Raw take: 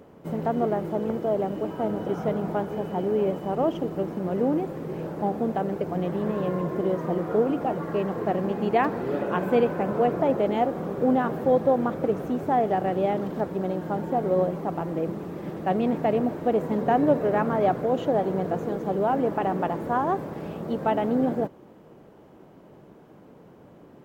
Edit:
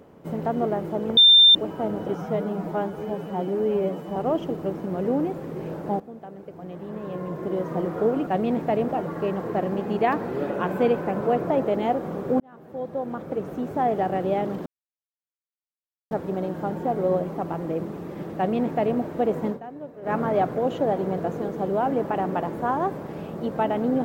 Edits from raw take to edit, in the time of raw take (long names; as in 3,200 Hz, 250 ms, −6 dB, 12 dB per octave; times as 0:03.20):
0:01.17–0:01.55: beep over 3,590 Hz −9.5 dBFS
0:02.15–0:03.49: time-stretch 1.5×
0:05.33–0:07.09: fade in quadratic, from −14.5 dB
0:11.12–0:12.65: fade in
0:13.38: splice in silence 1.45 s
0:15.63–0:16.24: duplicate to 0:07.60
0:16.75–0:17.41: duck −17.5 dB, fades 0.12 s